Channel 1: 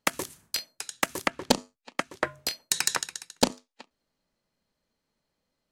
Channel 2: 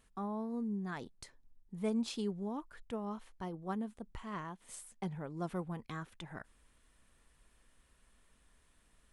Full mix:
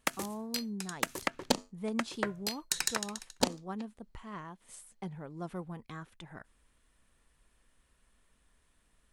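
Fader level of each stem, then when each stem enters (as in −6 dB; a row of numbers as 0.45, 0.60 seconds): −6.0, −1.5 decibels; 0.00, 0.00 seconds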